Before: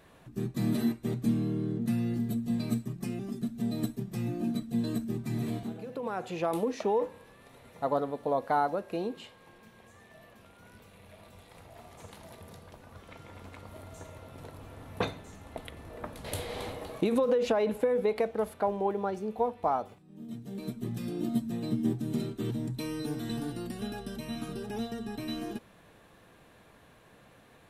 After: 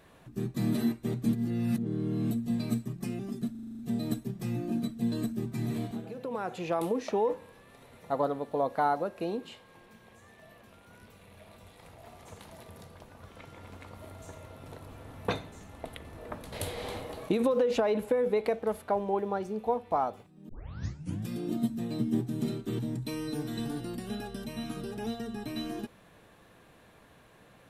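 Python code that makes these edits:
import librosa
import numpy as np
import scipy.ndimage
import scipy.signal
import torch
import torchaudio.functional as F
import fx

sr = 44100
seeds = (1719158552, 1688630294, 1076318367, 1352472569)

y = fx.edit(x, sr, fx.reverse_span(start_s=1.33, length_s=0.98),
    fx.stutter(start_s=3.51, slice_s=0.04, count=8),
    fx.tape_start(start_s=20.21, length_s=0.79), tone=tone)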